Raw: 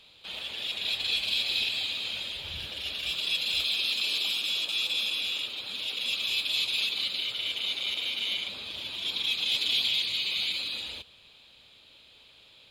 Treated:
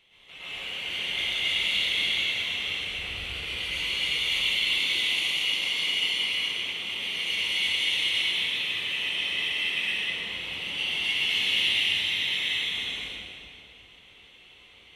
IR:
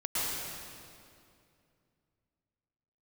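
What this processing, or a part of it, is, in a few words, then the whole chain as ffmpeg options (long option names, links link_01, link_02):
slowed and reverbed: -filter_complex "[0:a]asetrate=37485,aresample=44100[link_01];[1:a]atrim=start_sample=2205[link_02];[link_01][link_02]afir=irnorm=-1:irlink=0,volume=-5dB"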